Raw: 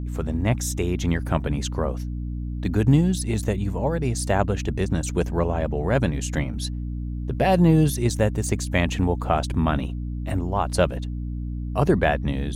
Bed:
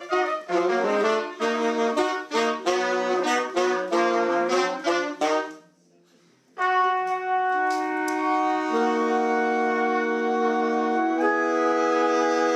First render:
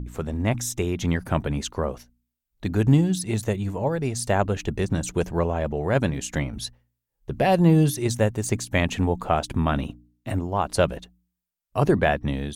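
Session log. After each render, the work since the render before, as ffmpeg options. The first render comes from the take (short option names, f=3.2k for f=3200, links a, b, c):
-af "bandreject=f=60:t=h:w=4,bandreject=f=120:t=h:w=4,bandreject=f=180:t=h:w=4,bandreject=f=240:t=h:w=4,bandreject=f=300:t=h:w=4"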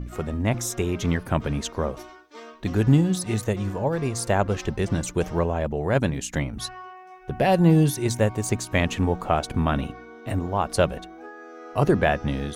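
-filter_complex "[1:a]volume=-19.5dB[a];[0:a][a]amix=inputs=2:normalize=0"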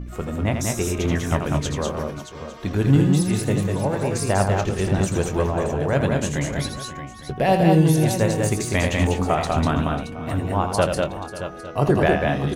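-filter_complex "[0:a]asplit=2[a][b];[b]adelay=21,volume=-12dB[c];[a][c]amix=inputs=2:normalize=0,asplit=2[d][e];[e]aecho=0:1:82|196|222|542|623|854:0.447|0.668|0.237|0.15|0.282|0.119[f];[d][f]amix=inputs=2:normalize=0"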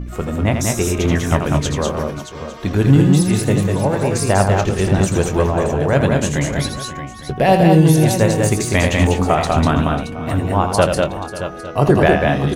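-af "volume=5.5dB,alimiter=limit=-1dB:level=0:latency=1"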